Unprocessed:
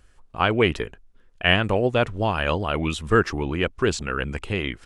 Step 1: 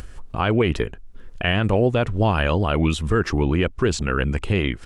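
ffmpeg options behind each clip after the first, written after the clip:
-filter_complex "[0:a]lowshelf=f=370:g=6.5,asplit=2[s0][s1];[s1]acompressor=mode=upward:threshold=0.1:ratio=2.5,volume=1.12[s2];[s0][s2]amix=inputs=2:normalize=0,alimiter=level_in=1.5:limit=0.891:release=50:level=0:latency=1,volume=0.398"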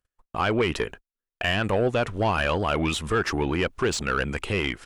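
-filter_complex "[0:a]aemphasis=mode=production:type=50fm,asplit=2[s0][s1];[s1]highpass=f=720:p=1,volume=5.62,asoftclip=type=tanh:threshold=0.447[s2];[s0][s2]amix=inputs=2:normalize=0,lowpass=f=2500:p=1,volume=0.501,agate=range=0.00501:threshold=0.0224:ratio=16:detection=peak,volume=0.531"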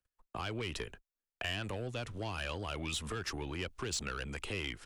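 -filter_complex "[0:a]acrossover=split=150|3000[s0][s1][s2];[s1]acompressor=threshold=0.0224:ratio=6[s3];[s0][s3][s2]amix=inputs=3:normalize=0,acrossover=split=180|920[s4][s5][s6];[s4]asoftclip=type=hard:threshold=0.0133[s7];[s7][s5][s6]amix=inputs=3:normalize=0,volume=0.501"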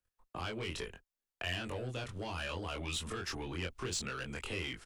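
-filter_complex "[0:a]asplit=2[s0][s1];[s1]adelay=23,volume=0.794[s2];[s0][s2]amix=inputs=2:normalize=0,volume=0.75"

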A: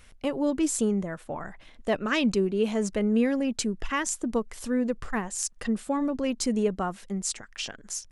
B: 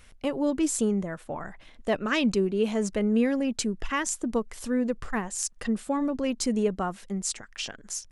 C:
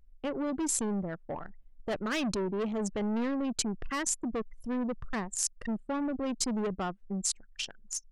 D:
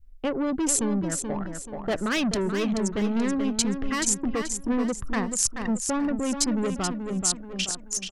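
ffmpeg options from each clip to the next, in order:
-af anull
-filter_complex "[0:a]anlmdn=15.8,acrossover=split=4400[s0][s1];[s0]asoftclip=type=tanh:threshold=0.0376[s2];[s2][s1]amix=inputs=2:normalize=0"
-af "aecho=1:1:431|862|1293|1724:0.447|0.156|0.0547|0.0192,adynamicequalizer=threshold=0.00562:dfrequency=710:dqfactor=0.79:tfrequency=710:tqfactor=0.79:attack=5:release=100:ratio=0.375:range=3:mode=cutabove:tftype=bell,volume=2.24"

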